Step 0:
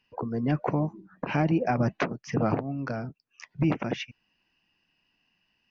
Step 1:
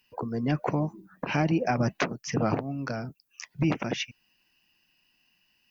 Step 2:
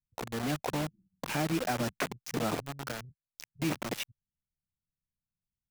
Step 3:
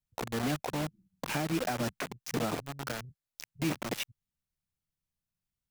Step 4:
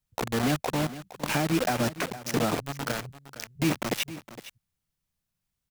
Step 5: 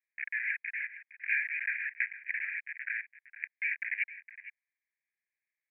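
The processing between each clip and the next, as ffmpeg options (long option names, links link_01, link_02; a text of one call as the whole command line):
ffmpeg -i in.wav -af "aemphasis=mode=production:type=75fm" out.wav
ffmpeg -i in.wav -filter_complex "[0:a]acrossover=split=150[link_01][link_02];[link_01]asoftclip=type=tanh:threshold=-37dB[link_03];[link_02]acrusher=bits=4:mix=0:aa=0.000001[link_04];[link_03][link_04]amix=inputs=2:normalize=0,volume=-5.5dB" out.wav
ffmpeg -i in.wav -af "alimiter=limit=-24dB:level=0:latency=1:release=305,volume=2dB" out.wav
ffmpeg -i in.wav -af "aecho=1:1:462:0.178,volume=6dB" out.wav
ffmpeg -i in.wav -af "asuperpass=centerf=2000:order=12:qfactor=2.4,volume=6.5dB" out.wav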